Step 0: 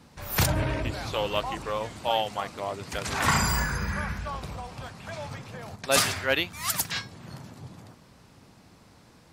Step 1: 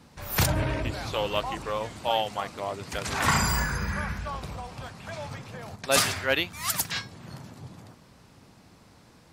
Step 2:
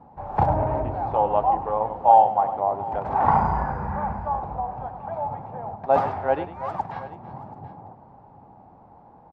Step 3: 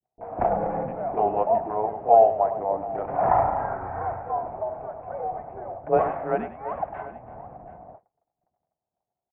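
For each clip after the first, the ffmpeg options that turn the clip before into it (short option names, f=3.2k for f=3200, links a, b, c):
-af anull
-af "lowpass=f=820:t=q:w=7.1,aecho=1:1:101|332|730:0.251|0.15|0.126"
-filter_complex "[0:a]highpass=f=210:t=q:w=0.5412,highpass=f=210:t=q:w=1.307,lowpass=f=2.6k:t=q:w=0.5176,lowpass=f=2.6k:t=q:w=0.7071,lowpass=f=2.6k:t=q:w=1.932,afreqshift=-110,agate=range=-37dB:threshold=-45dB:ratio=16:detection=peak,acrossover=split=420[a][b];[b]adelay=30[c];[a][c]amix=inputs=2:normalize=0"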